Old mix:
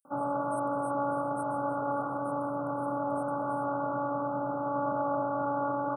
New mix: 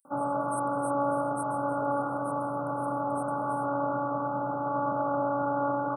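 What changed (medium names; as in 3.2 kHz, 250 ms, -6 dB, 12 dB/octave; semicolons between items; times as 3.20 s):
speech +8.5 dB; reverb: on, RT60 0.45 s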